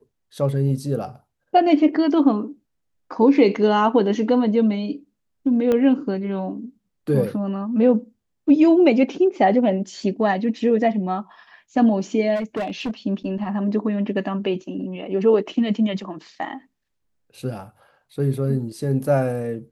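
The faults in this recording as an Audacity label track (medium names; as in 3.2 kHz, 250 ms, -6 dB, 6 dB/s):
5.720000	5.720000	pop -11 dBFS
12.350000	12.910000	clipped -21.5 dBFS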